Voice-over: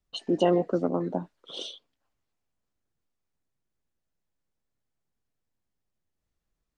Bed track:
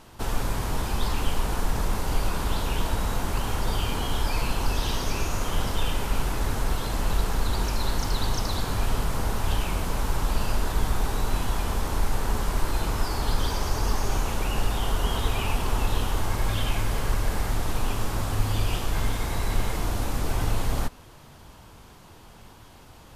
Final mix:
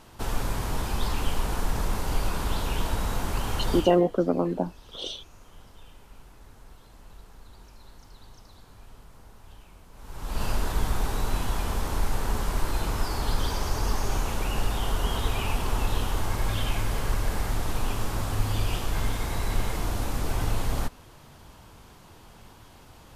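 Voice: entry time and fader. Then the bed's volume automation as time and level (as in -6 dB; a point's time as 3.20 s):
3.45 s, +2.5 dB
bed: 3.77 s -1.5 dB
4.03 s -24 dB
9.91 s -24 dB
10.43 s -1.5 dB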